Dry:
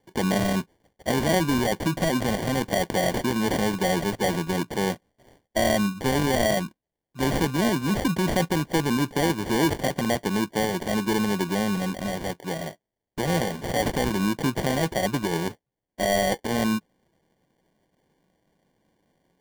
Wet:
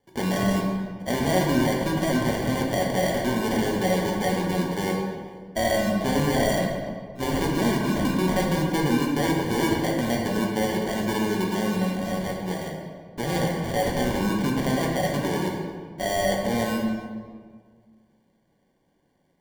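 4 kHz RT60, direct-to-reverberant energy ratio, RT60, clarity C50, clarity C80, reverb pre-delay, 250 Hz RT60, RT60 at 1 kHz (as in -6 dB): 1.1 s, -1.5 dB, 1.8 s, 2.0 dB, 3.5 dB, 5 ms, 2.0 s, 1.7 s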